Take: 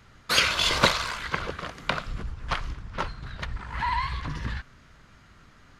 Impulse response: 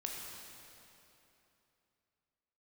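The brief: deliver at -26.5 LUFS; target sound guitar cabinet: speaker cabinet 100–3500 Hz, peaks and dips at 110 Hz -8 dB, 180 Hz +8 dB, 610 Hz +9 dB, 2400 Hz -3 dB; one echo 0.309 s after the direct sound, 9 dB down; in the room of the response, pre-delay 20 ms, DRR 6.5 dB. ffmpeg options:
-filter_complex "[0:a]aecho=1:1:309:0.355,asplit=2[a][b];[1:a]atrim=start_sample=2205,adelay=20[c];[b][c]afir=irnorm=-1:irlink=0,volume=-7dB[d];[a][d]amix=inputs=2:normalize=0,highpass=100,equalizer=f=110:t=q:w=4:g=-8,equalizer=f=180:t=q:w=4:g=8,equalizer=f=610:t=q:w=4:g=9,equalizer=f=2.4k:t=q:w=4:g=-3,lowpass=f=3.5k:w=0.5412,lowpass=f=3.5k:w=1.3066,volume=1dB"

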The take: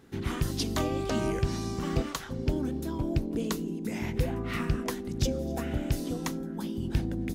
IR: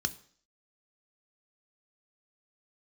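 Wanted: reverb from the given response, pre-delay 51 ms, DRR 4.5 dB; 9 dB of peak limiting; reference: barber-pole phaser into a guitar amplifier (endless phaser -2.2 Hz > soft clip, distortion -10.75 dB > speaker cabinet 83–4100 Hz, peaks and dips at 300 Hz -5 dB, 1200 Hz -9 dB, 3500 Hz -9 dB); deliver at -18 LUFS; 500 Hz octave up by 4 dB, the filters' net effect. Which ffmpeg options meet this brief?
-filter_complex "[0:a]equalizer=f=500:t=o:g=6.5,alimiter=limit=-22.5dB:level=0:latency=1,asplit=2[a][b];[1:a]atrim=start_sample=2205,adelay=51[c];[b][c]afir=irnorm=-1:irlink=0,volume=-8.5dB[d];[a][d]amix=inputs=2:normalize=0,asplit=2[e][f];[f]afreqshift=-2.2[g];[e][g]amix=inputs=2:normalize=1,asoftclip=threshold=-33.5dB,highpass=83,equalizer=f=300:t=q:w=4:g=-5,equalizer=f=1.2k:t=q:w=4:g=-9,equalizer=f=3.5k:t=q:w=4:g=-9,lowpass=f=4.1k:w=0.5412,lowpass=f=4.1k:w=1.3066,volume=22.5dB"

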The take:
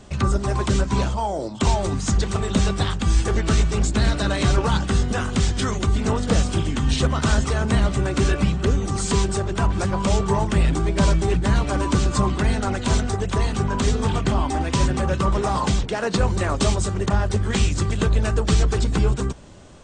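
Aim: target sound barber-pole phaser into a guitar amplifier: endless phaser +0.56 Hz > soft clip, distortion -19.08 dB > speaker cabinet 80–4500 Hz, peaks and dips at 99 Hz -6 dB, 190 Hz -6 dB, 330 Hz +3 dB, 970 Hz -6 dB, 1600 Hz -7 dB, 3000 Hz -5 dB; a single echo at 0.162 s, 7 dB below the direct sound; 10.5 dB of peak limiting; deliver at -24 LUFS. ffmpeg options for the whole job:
-filter_complex "[0:a]alimiter=limit=-17dB:level=0:latency=1,aecho=1:1:162:0.447,asplit=2[a][b];[b]afreqshift=0.56[c];[a][c]amix=inputs=2:normalize=1,asoftclip=threshold=-19.5dB,highpass=80,equalizer=f=99:t=q:w=4:g=-6,equalizer=f=190:t=q:w=4:g=-6,equalizer=f=330:t=q:w=4:g=3,equalizer=f=970:t=q:w=4:g=-6,equalizer=f=1.6k:t=q:w=4:g=-7,equalizer=f=3k:t=q:w=4:g=-5,lowpass=f=4.5k:w=0.5412,lowpass=f=4.5k:w=1.3066,volume=9.5dB"

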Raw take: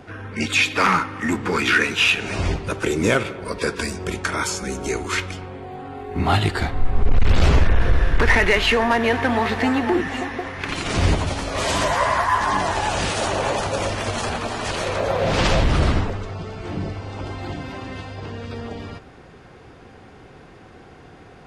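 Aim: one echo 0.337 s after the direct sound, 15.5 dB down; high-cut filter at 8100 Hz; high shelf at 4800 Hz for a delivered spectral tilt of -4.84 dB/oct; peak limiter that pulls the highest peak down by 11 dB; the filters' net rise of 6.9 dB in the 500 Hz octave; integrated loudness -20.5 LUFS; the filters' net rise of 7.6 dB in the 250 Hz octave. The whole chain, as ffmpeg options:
-af "lowpass=8.1k,equalizer=f=250:t=o:g=7.5,equalizer=f=500:t=o:g=6.5,highshelf=f=4.8k:g=-8.5,alimiter=limit=-12.5dB:level=0:latency=1,aecho=1:1:337:0.168,volume=2dB"

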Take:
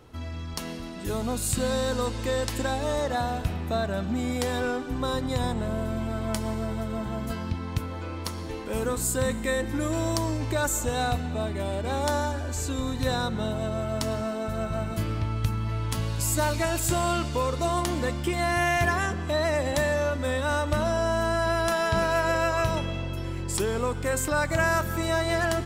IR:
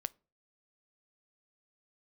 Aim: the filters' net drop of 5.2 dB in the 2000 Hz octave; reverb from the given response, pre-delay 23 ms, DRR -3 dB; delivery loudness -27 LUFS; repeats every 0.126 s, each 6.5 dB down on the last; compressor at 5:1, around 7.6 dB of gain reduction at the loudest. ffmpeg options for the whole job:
-filter_complex "[0:a]equalizer=f=2k:t=o:g=-7,acompressor=threshold=-29dB:ratio=5,aecho=1:1:126|252|378|504|630|756:0.473|0.222|0.105|0.0491|0.0231|0.0109,asplit=2[a][b];[1:a]atrim=start_sample=2205,adelay=23[c];[b][c]afir=irnorm=-1:irlink=0,volume=4.5dB[d];[a][d]amix=inputs=2:normalize=0,volume=-0.5dB"

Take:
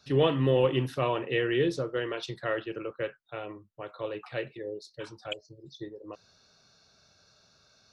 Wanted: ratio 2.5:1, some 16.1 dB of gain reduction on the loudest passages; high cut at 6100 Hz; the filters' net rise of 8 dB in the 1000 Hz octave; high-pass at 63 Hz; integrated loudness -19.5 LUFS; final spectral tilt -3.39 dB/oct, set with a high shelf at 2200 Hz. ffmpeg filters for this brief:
-af "highpass=63,lowpass=6.1k,equalizer=f=1k:t=o:g=8,highshelf=f=2.2k:g=7.5,acompressor=threshold=-42dB:ratio=2.5,volume=22dB"

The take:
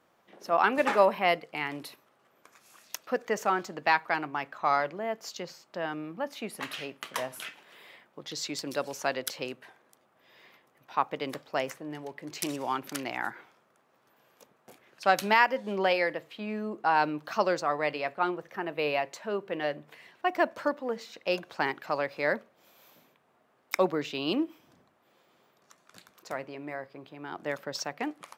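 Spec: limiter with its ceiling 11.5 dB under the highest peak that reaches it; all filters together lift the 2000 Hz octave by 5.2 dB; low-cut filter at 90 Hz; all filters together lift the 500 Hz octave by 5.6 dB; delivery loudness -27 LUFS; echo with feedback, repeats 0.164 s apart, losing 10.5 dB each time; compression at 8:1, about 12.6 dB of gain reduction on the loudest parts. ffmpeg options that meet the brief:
-af "highpass=90,equalizer=f=500:t=o:g=6.5,equalizer=f=2k:t=o:g=6,acompressor=threshold=-25dB:ratio=8,alimiter=limit=-22dB:level=0:latency=1,aecho=1:1:164|328|492:0.299|0.0896|0.0269,volume=7dB"

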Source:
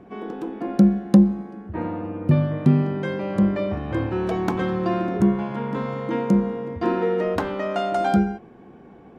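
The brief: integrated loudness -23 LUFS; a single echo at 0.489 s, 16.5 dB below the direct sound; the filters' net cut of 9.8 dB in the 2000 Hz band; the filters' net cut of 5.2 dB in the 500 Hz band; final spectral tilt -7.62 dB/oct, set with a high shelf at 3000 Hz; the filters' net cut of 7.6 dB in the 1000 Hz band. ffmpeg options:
-af "equalizer=f=500:t=o:g=-5,equalizer=f=1k:t=o:g=-6.5,equalizer=f=2k:t=o:g=-8.5,highshelf=f=3k:g=-5,aecho=1:1:489:0.15,volume=1dB"

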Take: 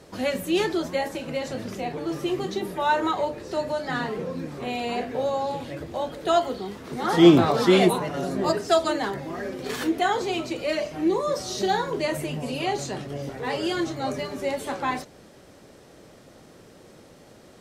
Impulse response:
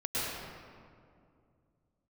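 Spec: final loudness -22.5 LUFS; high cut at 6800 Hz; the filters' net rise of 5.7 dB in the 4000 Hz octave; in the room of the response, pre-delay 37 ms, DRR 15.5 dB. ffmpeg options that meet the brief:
-filter_complex "[0:a]lowpass=6.8k,equalizer=f=4k:t=o:g=7.5,asplit=2[a][b];[1:a]atrim=start_sample=2205,adelay=37[c];[b][c]afir=irnorm=-1:irlink=0,volume=-23dB[d];[a][d]amix=inputs=2:normalize=0,volume=2dB"

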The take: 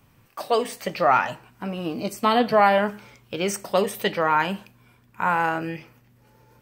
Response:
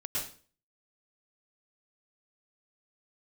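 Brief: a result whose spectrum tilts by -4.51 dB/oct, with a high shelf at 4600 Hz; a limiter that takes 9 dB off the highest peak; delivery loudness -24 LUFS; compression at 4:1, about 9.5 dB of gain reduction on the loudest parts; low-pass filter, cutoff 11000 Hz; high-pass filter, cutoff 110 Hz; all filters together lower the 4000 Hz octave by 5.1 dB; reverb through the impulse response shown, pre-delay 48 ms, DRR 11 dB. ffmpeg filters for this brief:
-filter_complex "[0:a]highpass=110,lowpass=11k,equalizer=f=4k:t=o:g=-4.5,highshelf=f=4.6k:g=-6.5,acompressor=threshold=-25dB:ratio=4,alimiter=limit=-22dB:level=0:latency=1,asplit=2[a][b];[1:a]atrim=start_sample=2205,adelay=48[c];[b][c]afir=irnorm=-1:irlink=0,volume=-15dB[d];[a][d]amix=inputs=2:normalize=0,volume=9.5dB"

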